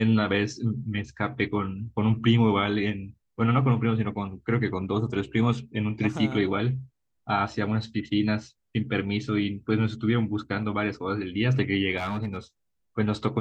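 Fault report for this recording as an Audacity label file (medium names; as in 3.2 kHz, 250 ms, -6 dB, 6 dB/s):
11.970000	12.370000	clipped -24.5 dBFS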